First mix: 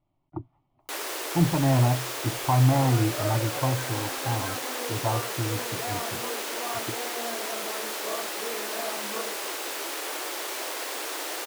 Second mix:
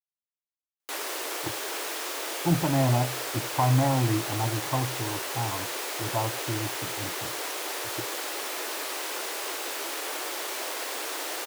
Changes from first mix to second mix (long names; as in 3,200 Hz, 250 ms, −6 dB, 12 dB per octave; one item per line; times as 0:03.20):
speech: entry +1.10 s
second sound: muted
master: add low-shelf EQ 160 Hz −5 dB